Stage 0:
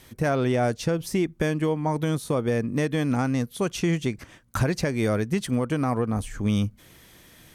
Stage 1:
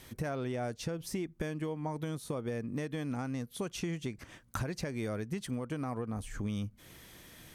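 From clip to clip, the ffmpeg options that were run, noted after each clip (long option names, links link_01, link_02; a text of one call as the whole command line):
ffmpeg -i in.wav -af "acompressor=threshold=-34dB:ratio=3,volume=-2dB" out.wav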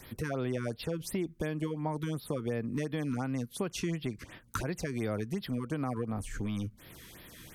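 ffmpeg -i in.wav -filter_complex "[0:a]acrossover=split=210[link_01][link_02];[link_01]aeval=exprs='0.0158*(abs(mod(val(0)/0.0158+3,4)-2)-1)':channel_layout=same[link_03];[link_03][link_02]amix=inputs=2:normalize=0,afftfilt=real='re*(1-between(b*sr/1024,620*pow(7900/620,0.5+0.5*sin(2*PI*2.8*pts/sr))/1.41,620*pow(7900/620,0.5+0.5*sin(2*PI*2.8*pts/sr))*1.41))':imag='im*(1-between(b*sr/1024,620*pow(7900/620,0.5+0.5*sin(2*PI*2.8*pts/sr))/1.41,620*pow(7900/620,0.5+0.5*sin(2*PI*2.8*pts/sr))*1.41))':win_size=1024:overlap=0.75,volume=3dB" out.wav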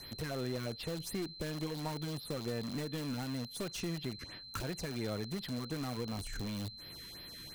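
ffmpeg -i in.wav -filter_complex "[0:a]aeval=exprs='(tanh(25.1*val(0)+0.6)-tanh(0.6))/25.1':channel_layout=same,aeval=exprs='val(0)+0.00355*sin(2*PI*4100*n/s)':channel_layout=same,asplit=2[link_01][link_02];[link_02]aeval=exprs='(mod(50.1*val(0)+1,2)-1)/50.1':channel_layout=same,volume=-3.5dB[link_03];[link_01][link_03]amix=inputs=2:normalize=0,volume=-3.5dB" out.wav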